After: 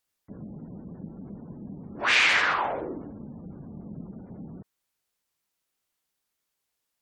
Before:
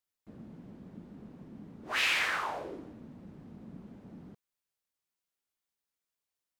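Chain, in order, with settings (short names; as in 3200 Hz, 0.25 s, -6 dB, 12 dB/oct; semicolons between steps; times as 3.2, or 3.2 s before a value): varispeed -6%; spectral gate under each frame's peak -30 dB strong; gain +8 dB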